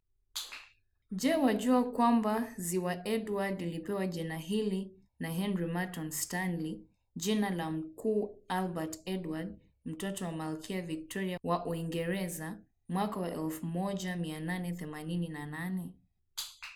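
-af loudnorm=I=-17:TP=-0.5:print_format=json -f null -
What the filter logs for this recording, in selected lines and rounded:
"input_i" : "-35.1",
"input_tp" : "-15.5",
"input_lra" : "6.6",
"input_thresh" : "-45.3",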